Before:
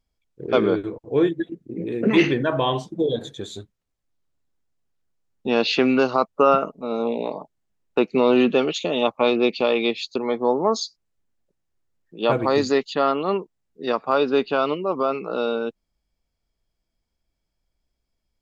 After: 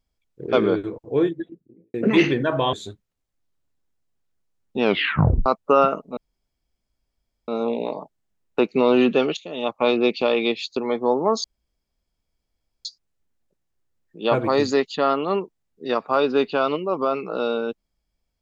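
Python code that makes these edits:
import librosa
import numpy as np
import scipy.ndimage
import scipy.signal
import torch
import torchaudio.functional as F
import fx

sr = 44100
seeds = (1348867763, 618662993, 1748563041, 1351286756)

y = fx.studio_fade_out(x, sr, start_s=1.01, length_s=0.93)
y = fx.edit(y, sr, fx.cut(start_s=2.73, length_s=0.7),
    fx.tape_stop(start_s=5.53, length_s=0.63),
    fx.insert_room_tone(at_s=6.87, length_s=1.31),
    fx.fade_in_from(start_s=8.76, length_s=0.51, floor_db=-20.0),
    fx.insert_room_tone(at_s=10.83, length_s=1.41), tone=tone)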